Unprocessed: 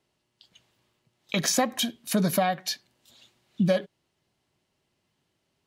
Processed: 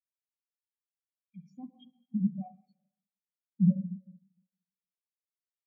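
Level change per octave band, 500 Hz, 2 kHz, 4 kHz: below −30 dB, below −40 dB, below −35 dB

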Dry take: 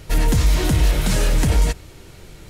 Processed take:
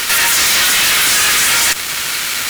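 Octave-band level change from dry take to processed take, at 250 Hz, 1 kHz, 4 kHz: −8.5, +11.0, +18.0 decibels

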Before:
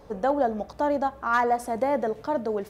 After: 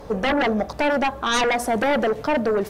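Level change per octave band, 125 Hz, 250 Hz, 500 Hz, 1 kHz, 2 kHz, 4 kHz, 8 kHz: +9.0, +6.5, +4.0, +2.0, +9.5, +19.5, +14.0 decibels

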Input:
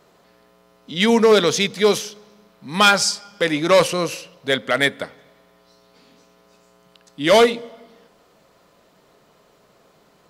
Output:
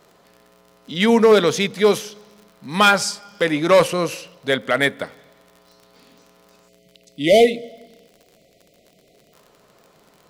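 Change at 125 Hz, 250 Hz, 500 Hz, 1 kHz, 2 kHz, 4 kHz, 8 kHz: +1.0, +1.0, +1.0, 0.0, −0.5, −3.0, −3.5 decibels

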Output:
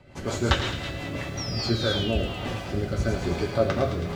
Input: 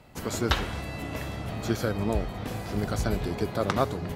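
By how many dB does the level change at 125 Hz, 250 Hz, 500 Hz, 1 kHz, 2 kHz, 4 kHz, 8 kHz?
+3.0, +1.5, +3.5, −0.5, +3.5, +7.0, +0.5 decibels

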